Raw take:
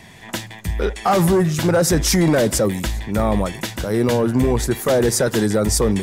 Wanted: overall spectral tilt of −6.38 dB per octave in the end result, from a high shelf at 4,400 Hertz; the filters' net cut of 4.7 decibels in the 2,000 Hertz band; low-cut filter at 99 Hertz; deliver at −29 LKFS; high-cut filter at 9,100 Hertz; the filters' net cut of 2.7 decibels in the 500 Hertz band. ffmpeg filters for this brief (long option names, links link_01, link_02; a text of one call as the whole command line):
ffmpeg -i in.wav -af "highpass=99,lowpass=9100,equalizer=frequency=500:width_type=o:gain=-3,equalizer=frequency=2000:width_type=o:gain=-4.5,highshelf=frequency=4400:gain=-8.5,volume=-8dB" out.wav